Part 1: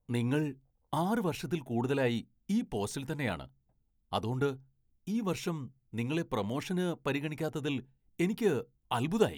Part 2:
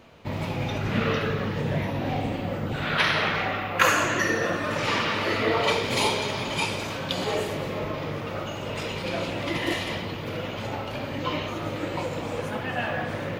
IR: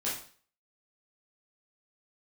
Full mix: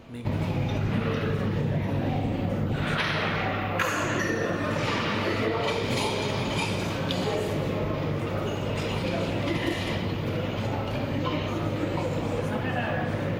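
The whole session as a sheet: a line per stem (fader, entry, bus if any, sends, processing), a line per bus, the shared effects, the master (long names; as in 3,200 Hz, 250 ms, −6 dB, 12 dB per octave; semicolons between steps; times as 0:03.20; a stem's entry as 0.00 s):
−13.5 dB, 0.00 s, send −8.5 dB, leveller curve on the samples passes 1
−0.5 dB, 0.00 s, no send, low-shelf EQ 390 Hz +8 dB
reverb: on, RT60 0.45 s, pre-delay 8 ms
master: downward compressor, threshold −23 dBFS, peak gain reduction 9 dB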